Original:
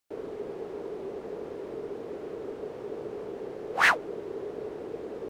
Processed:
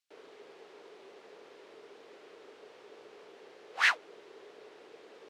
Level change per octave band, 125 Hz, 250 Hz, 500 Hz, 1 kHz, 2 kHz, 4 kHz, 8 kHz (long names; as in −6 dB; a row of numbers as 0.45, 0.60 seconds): below −25 dB, −19.5 dB, −16.5 dB, −8.5 dB, −4.0 dB, −0.5 dB, −3.5 dB